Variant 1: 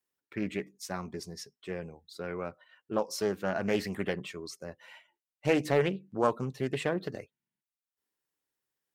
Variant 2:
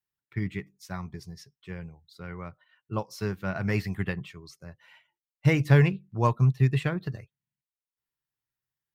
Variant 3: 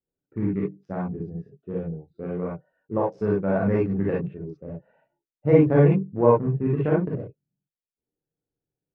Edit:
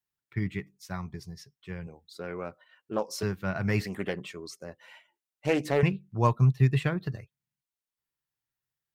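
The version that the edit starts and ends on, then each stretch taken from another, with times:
2
1.87–3.23 s: from 1
3.81–5.83 s: from 1
not used: 3

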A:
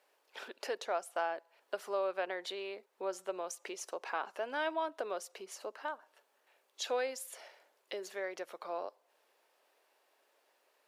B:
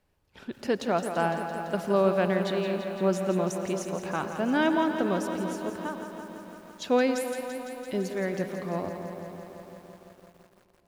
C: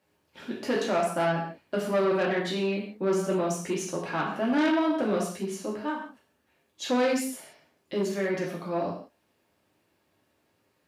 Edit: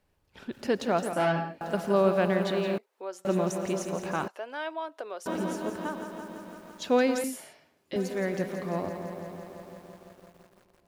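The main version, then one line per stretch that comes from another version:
B
1.13–1.61 s: from C
2.78–3.25 s: from A
4.28–5.26 s: from A
7.24–7.96 s: from C

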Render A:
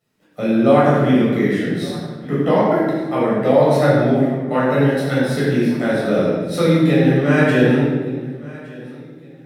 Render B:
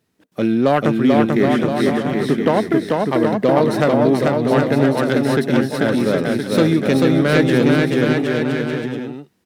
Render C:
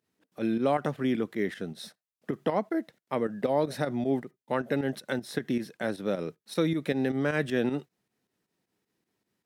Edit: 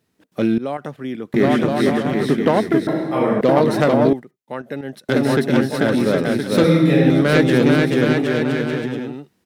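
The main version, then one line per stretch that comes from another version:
B
0.58–1.34 s: from C
2.87–3.41 s: from A
4.13–5.09 s: from C
6.64–7.10 s: from A

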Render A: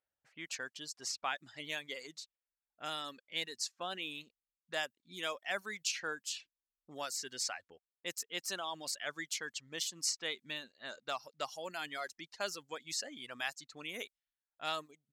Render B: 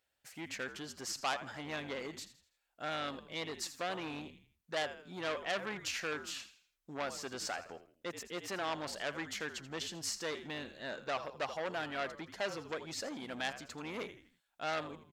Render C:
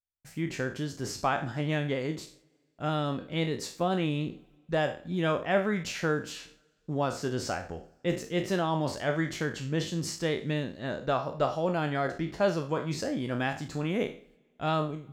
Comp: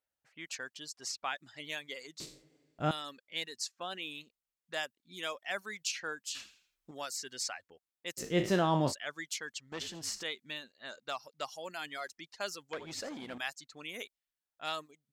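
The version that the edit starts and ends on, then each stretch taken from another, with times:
A
2.20–2.91 s: from C
6.35–6.91 s: from B
8.20–8.91 s: from C, crossfade 0.06 s
9.72–10.23 s: from B
12.73–13.38 s: from B

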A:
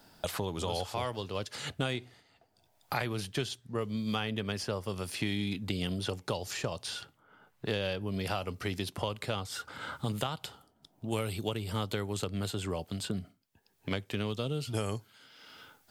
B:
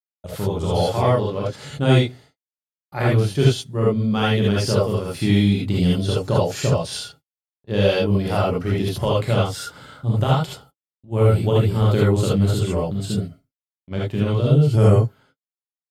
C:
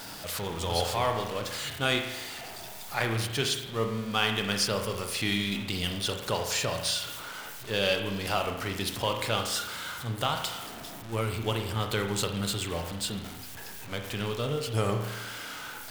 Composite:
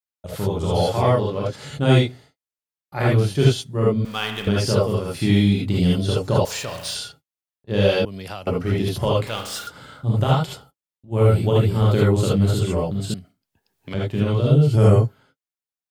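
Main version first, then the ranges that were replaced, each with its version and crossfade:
B
4.05–4.47 s: from C
6.45–6.95 s: from C
8.05–8.47 s: from A
9.27–9.67 s: from C
13.14–13.94 s: from A

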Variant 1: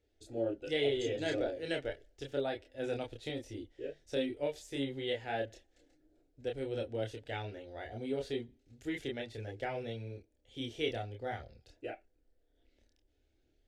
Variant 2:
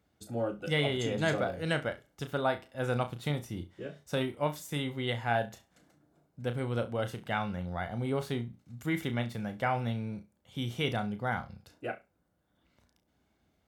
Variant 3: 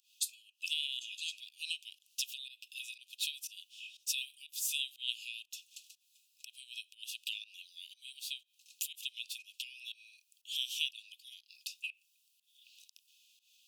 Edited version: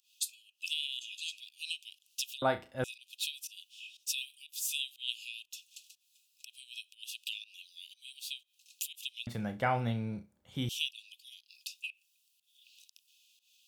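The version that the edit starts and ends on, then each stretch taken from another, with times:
3
2.42–2.84 s: from 2
9.27–10.69 s: from 2
not used: 1

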